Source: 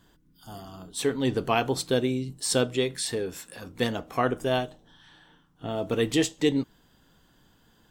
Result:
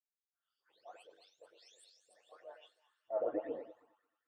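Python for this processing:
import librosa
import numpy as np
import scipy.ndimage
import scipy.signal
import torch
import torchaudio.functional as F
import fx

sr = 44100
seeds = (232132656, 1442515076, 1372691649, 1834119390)

y = fx.spec_delay(x, sr, highs='late', ms=885)
y = fx.tilt_eq(y, sr, slope=1.5)
y = fx.filter_sweep_bandpass(y, sr, from_hz=5500.0, to_hz=760.0, start_s=4.21, end_s=6.34, q=0.95)
y = fx.low_shelf(y, sr, hz=270.0, db=4.5)
y = fx.echo_alternate(y, sr, ms=203, hz=1900.0, feedback_pct=81, wet_db=-12)
y = fx.auto_wah(y, sr, base_hz=590.0, top_hz=1800.0, q=4.6, full_db=-40.5, direction='down')
y = fx.stretch_grains(y, sr, factor=0.54, grain_ms=21.0)
y = fx.transient(y, sr, attack_db=-4, sustain_db=1)
y = fx.band_widen(y, sr, depth_pct=100)
y = y * 10.0 ** (1.0 / 20.0)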